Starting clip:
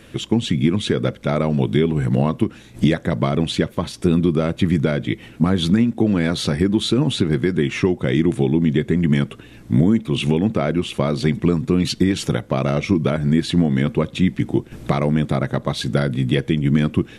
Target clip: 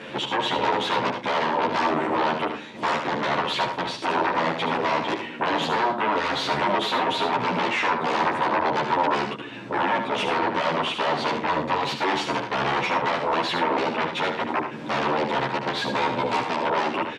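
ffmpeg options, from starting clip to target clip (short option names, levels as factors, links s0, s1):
-filter_complex "[0:a]asplit=2[s0][s1];[s1]acompressor=threshold=0.0126:ratio=6,volume=0.708[s2];[s0][s2]amix=inputs=2:normalize=0,aeval=exprs='0.266*sin(PI/2*3.55*val(0)/0.266)':c=same,highpass=270,lowpass=3500,equalizer=f=940:w=6.1:g=9,aecho=1:1:74|111:0.447|0.178,asplit=2[s3][s4];[s4]adelay=11,afreqshift=-0.33[s5];[s3][s5]amix=inputs=2:normalize=1,volume=0.501"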